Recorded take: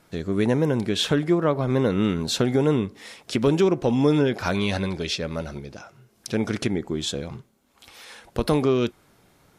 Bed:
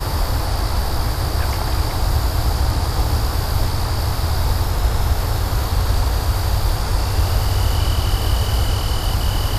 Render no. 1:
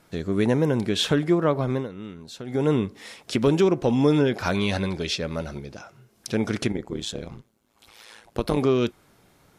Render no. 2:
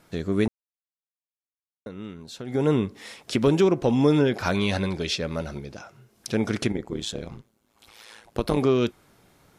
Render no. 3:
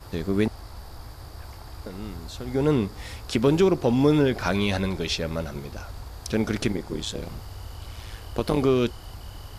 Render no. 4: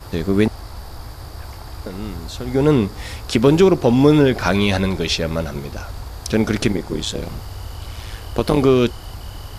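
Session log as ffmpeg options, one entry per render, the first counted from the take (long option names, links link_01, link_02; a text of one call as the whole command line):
ffmpeg -i in.wav -filter_complex "[0:a]asettb=1/sr,asplit=3[link_01][link_02][link_03];[link_01]atrim=end=6.724[link_04];[link_02]atrim=start=6.72:end=8.58,asetpts=PTS-STARTPTS,afade=type=in:duration=0.004:curve=qsin,afade=type=out:start_time=1.856:duration=0.004:curve=qsin,tremolo=f=110:d=0.824[link_05];[link_03]atrim=start=8.576[link_06];[link_04][link_05]acrossfade=duration=0.004:curve1=hsin:curve2=qsin[link_07];[link_07][link_06]acrossfade=duration=0.004:curve1=qsin:curve2=hsin,asplit=3[link_08][link_09][link_10];[link_08]atrim=end=1.88,asetpts=PTS-STARTPTS,afade=type=out:start_time=1.55:duration=0.33:curve=qsin:silence=0.16788[link_11];[link_09]atrim=start=1.88:end=2.45,asetpts=PTS-STARTPTS,volume=-15.5dB[link_12];[link_10]atrim=start=2.45,asetpts=PTS-STARTPTS,afade=type=in:duration=0.33:curve=qsin:silence=0.16788[link_13];[link_11][link_12][link_13]concat=n=3:v=0:a=1" out.wav
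ffmpeg -i in.wav -filter_complex "[0:a]asplit=3[link_01][link_02][link_03];[link_01]atrim=end=0.48,asetpts=PTS-STARTPTS,afade=type=out:start_time=0.476:duration=0.004:curve=hsin[link_04];[link_02]atrim=start=0.48:end=1.86,asetpts=PTS-STARTPTS,volume=0[link_05];[link_03]atrim=start=1.86,asetpts=PTS-STARTPTS,afade=type=in:duration=0.004:curve=hsin[link_06];[link_04][link_05][link_06]concat=n=3:v=0:a=1" out.wav
ffmpeg -i in.wav -i bed.wav -filter_complex "[1:a]volume=-21dB[link_01];[0:a][link_01]amix=inputs=2:normalize=0" out.wav
ffmpeg -i in.wav -af "volume=7dB" out.wav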